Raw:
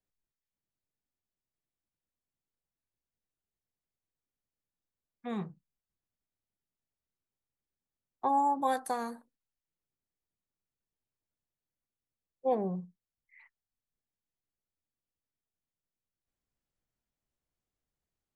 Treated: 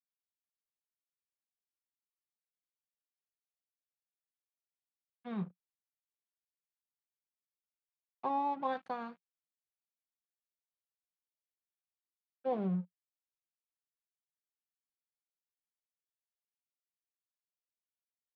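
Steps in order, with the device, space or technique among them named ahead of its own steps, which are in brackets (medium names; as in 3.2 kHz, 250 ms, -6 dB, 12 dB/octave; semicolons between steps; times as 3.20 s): blown loudspeaker (crossover distortion -46 dBFS; cabinet simulation 140–3500 Hz, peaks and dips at 180 Hz +9 dB, 270 Hz -3 dB, 450 Hz -4 dB, 800 Hz -4 dB, 1.9 kHz -5 dB, 2.8 kHz -3 dB); trim -2 dB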